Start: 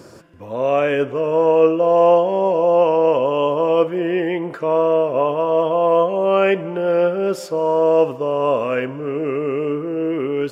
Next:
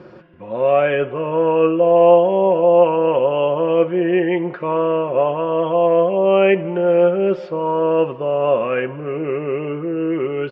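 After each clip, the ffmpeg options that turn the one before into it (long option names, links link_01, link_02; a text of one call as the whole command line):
ffmpeg -i in.wav -af "lowpass=frequency=3300:width=0.5412,lowpass=frequency=3300:width=1.3066,aecho=1:1:5.5:0.52" out.wav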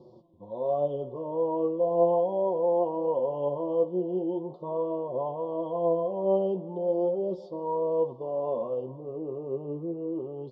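ffmpeg -i in.wav -af "flanger=delay=8:depth=8.3:regen=38:speed=0.38:shape=sinusoidal,asuperstop=centerf=1900:order=12:qfactor=0.77,volume=-8dB" out.wav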